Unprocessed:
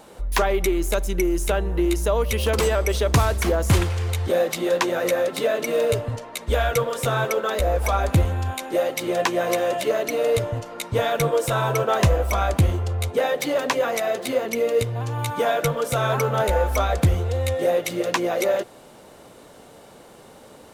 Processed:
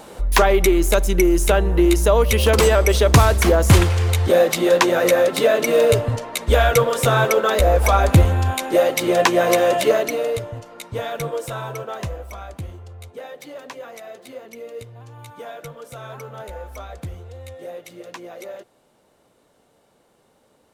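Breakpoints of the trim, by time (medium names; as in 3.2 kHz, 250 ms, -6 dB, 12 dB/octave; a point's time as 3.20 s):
9.91 s +6 dB
10.43 s -5 dB
11.34 s -5 dB
12.48 s -14 dB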